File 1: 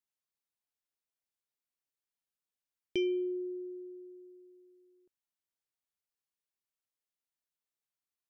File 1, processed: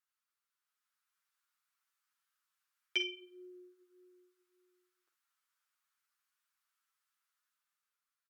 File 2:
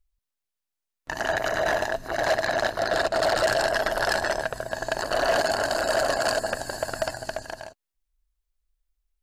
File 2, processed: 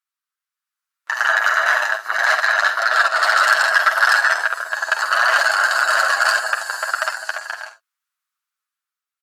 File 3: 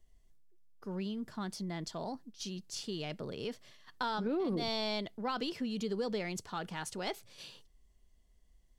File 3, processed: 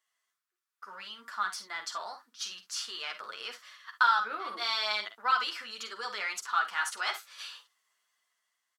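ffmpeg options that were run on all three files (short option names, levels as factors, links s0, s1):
-af "aecho=1:1:48|66:0.299|0.15,dynaudnorm=f=130:g=13:m=2,asoftclip=type=hard:threshold=0.316,highpass=f=1300:t=q:w=3.8,flanger=delay=7.9:depth=2.2:regen=-3:speed=1.7:shape=triangular,volume=1.33" -ar 48000 -c:a libmp3lame -b:a 320k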